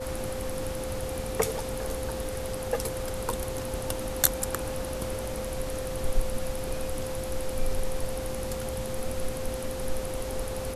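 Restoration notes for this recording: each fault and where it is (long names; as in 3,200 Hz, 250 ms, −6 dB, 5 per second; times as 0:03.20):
whistle 520 Hz −34 dBFS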